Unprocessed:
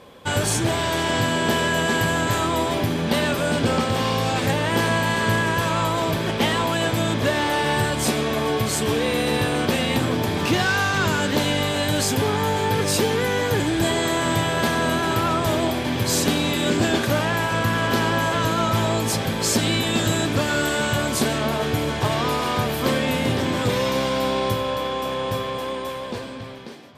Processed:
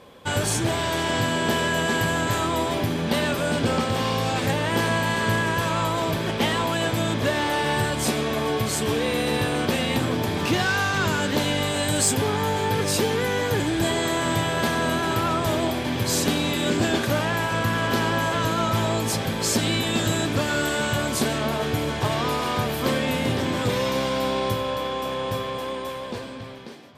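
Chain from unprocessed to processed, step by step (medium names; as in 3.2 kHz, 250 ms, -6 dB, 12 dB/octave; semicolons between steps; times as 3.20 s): 11.61–12.12 s: peaking EQ 8.1 kHz +4 dB -> +12.5 dB 0.33 oct; overload inside the chain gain 10 dB; trim -2 dB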